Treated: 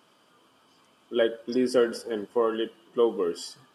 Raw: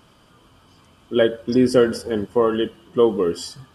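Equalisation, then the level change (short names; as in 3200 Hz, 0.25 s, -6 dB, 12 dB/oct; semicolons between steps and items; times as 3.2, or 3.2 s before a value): HPF 270 Hz 12 dB/oct; -6.0 dB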